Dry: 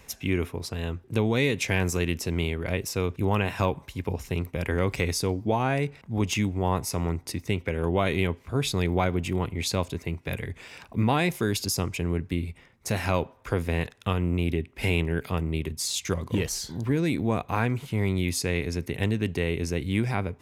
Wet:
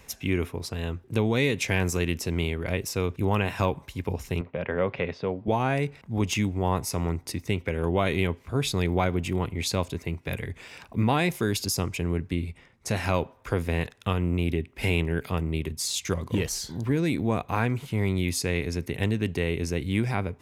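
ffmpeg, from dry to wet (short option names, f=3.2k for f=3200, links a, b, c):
-filter_complex "[0:a]asettb=1/sr,asplit=3[a][b][c];[a]atrim=end=4.414[d];[b]atrim=start=4.41:end=5.48,asetpts=PTS-STARTPTS,afade=t=in:d=0.004:c=qsin,afade=t=out:st=1.066:d=0.004:c=qsin,highpass=150,equalizer=f=310:t=q:w=4:g=-9,equalizer=f=570:t=q:w=4:g=6,equalizer=f=2.2k:t=q:w=4:g=-4,lowpass=f=3k:w=0.5412,lowpass=f=3k:w=1.3066[e];[c]atrim=start=5.476[f];[d][e]acrossfade=d=0.004:c1=hsin:c2=qsin[g];[g][f]acrossfade=d=0.004:c1=qsin:c2=hsin,asettb=1/sr,asplit=3[h][i][j];[h]atrim=end=12.284[k];[i]atrim=start=12.28:end=13.04,asetpts=PTS-STARTPTS,afade=t=in:d=0.004:c=qsin,afade=t=out:st=0.756:d=0.004:c=qsin,lowpass=11k[l];[j]atrim=start=13.036[m];[k][l]acrossfade=d=0.004:c1=hsin:c2=qsin[n];[n][m]acrossfade=d=0.004:c1=qsin:c2=hsin"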